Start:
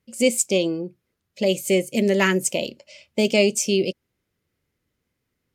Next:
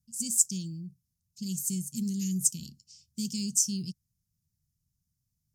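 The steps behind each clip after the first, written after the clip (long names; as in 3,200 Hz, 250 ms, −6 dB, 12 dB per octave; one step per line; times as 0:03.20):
elliptic band-stop filter 160–5,600 Hz, stop band 70 dB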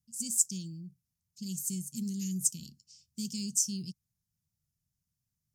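low-shelf EQ 82 Hz −6 dB
level −3 dB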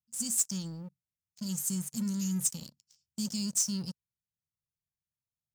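leveller curve on the samples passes 3
level −8.5 dB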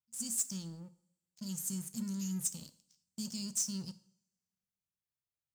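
coupled-rooms reverb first 0.54 s, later 1.6 s, from −25 dB, DRR 12.5 dB
level −5.5 dB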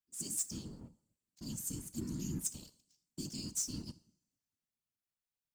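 random phases in short frames
level −2.5 dB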